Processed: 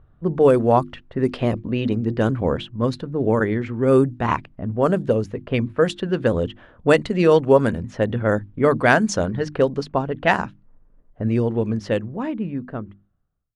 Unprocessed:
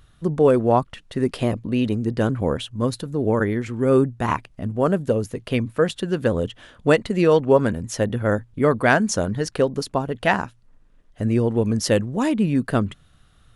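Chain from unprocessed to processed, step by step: ending faded out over 2.61 s; notches 50/100/150/200/250/300/350 Hz; low-pass opened by the level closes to 870 Hz, open at -13.5 dBFS; gain +1.5 dB

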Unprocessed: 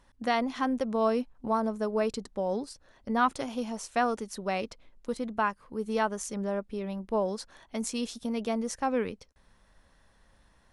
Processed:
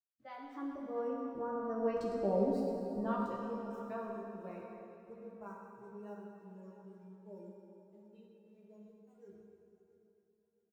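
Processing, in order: Doppler pass-by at 2.33, 22 m/s, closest 6.4 m; LPF 1300 Hz 6 dB/oct; bell 310 Hz +8.5 dB 0.81 oct; in parallel at -2 dB: limiter -30.5 dBFS, peak gain reduction 11.5 dB; on the sum: sample gate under -55 dBFS; spectral noise reduction 19 dB; doubler 15 ms -4 dB; on a send: feedback echo 0.669 s, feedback 34%, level -17 dB; on the sum: plate-style reverb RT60 3 s, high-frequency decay 0.8×, DRR -1.5 dB; gain -8.5 dB

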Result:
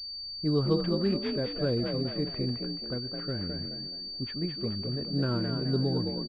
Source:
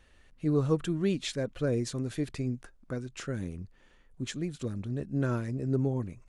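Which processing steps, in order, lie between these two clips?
low-pass opened by the level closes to 470 Hz, open at -28 dBFS; frequency-shifting echo 0.213 s, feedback 39%, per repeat +47 Hz, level -5.5 dB; pulse-width modulation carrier 4600 Hz

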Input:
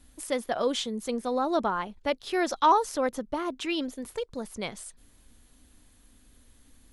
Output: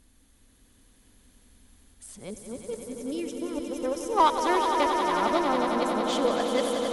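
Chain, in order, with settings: whole clip reversed; spectral gain 2.18–4.17, 600–5000 Hz -12 dB; added harmonics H 4 -26 dB, 7 -28 dB, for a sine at -10 dBFS; swelling echo 91 ms, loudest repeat 5, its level -8 dB

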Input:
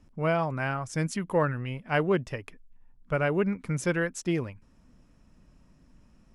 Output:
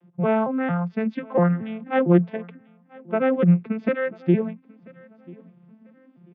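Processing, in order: arpeggiated vocoder major triad, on F3, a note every 0.228 s; steep low-pass 3700 Hz 36 dB/oct; on a send: feedback echo 0.99 s, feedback 27%, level -24 dB; on the sum: gain +7.5 dB

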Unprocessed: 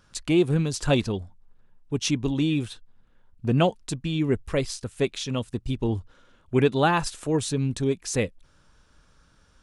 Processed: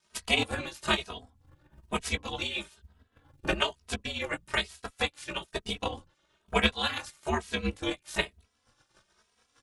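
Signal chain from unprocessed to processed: spectral limiter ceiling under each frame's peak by 27 dB; chorus voices 6, 0.52 Hz, delay 18 ms, depth 4.5 ms; ring modulator 72 Hz; transient shaper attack +11 dB, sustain -5 dB; endless flanger 2.8 ms +1.1 Hz; gain -3.5 dB

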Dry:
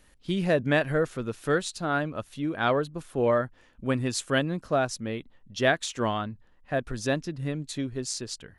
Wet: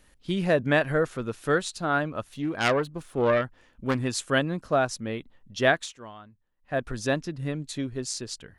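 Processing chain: 2.32–4.05 self-modulated delay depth 0.21 ms; dynamic EQ 1100 Hz, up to +3 dB, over -38 dBFS, Q 0.8; 5.76–6.8 dip -17.5 dB, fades 0.22 s

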